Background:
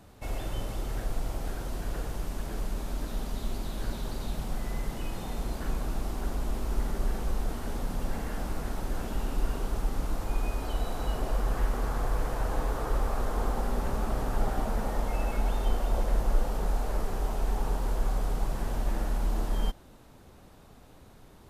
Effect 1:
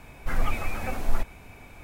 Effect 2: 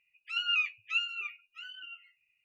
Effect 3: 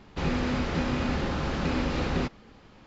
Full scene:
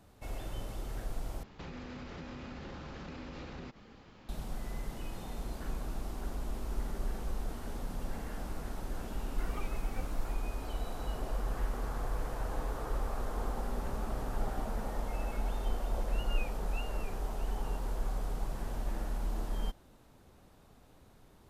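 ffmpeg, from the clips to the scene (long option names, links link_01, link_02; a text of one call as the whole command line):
ffmpeg -i bed.wav -i cue0.wav -i cue1.wav -i cue2.wav -filter_complex "[0:a]volume=-6.5dB[link_01];[3:a]acompressor=threshold=-39dB:ratio=6:attack=3.2:release=140:knee=1:detection=peak[link_02];[1:a]asplit=2[link_03][link_04];[link_04]adelay=2.2,afreqshift=2.4[link_05];[link_03][link_05]amix=inputs=2:normalize=1[link_06];[link_01]asplit=2[link_07][link_08];[link_07]atrim=end=1.434[link_09];[link_02]atrim=end=2.86,asetpts=PTS-STARTPTS,volume=-3dB[link_10];[link_08]atrim=start=4.286[link_11];[link_06]atrim=end=1.83,asetpts=PTS-STARTPTS,volume=-12dB,afade=type=in:duration=0.004:curve=hsin,afade=type=out:start_time=1.826:duration=0.004:curve=hsin,adelay=9100[link_12];[2:a]atrim=end=2.44,asetpts=PTS-STARTPTS,volume=-17dB,afade=type=in:duration=0.004:curve=hsin,afade=type=out:start_time=2.436:duration=0.004:curve=hsin,adelay=15820[link_13];[link_09][link_10]acrossfade=duration=0.004:curve1=hsin:curve2=hsin[link_14];[link_14][link_11]acrossfade=duration=0.004:curve1=hsin:curve2=hsin[link_15];[link_15][link_12][link_13]amix=inputs=3:normalize=0" out.wav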